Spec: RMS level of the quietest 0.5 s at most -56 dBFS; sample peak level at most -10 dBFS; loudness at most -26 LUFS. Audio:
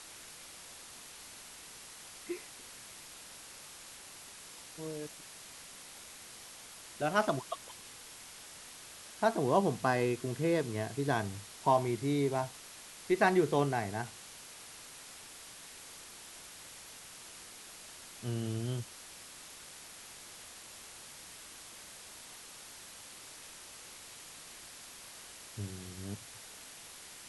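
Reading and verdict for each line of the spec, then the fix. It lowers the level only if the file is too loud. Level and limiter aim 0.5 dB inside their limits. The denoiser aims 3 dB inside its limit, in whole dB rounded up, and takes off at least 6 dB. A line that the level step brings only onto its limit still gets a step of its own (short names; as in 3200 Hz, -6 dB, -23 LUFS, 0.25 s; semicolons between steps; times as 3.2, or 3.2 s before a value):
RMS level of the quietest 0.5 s -51 dBFS: fail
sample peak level -13.5 dBFS: OK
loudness -38.0 LUFS: OK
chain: denoiser 8 dB, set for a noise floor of -51 dBFS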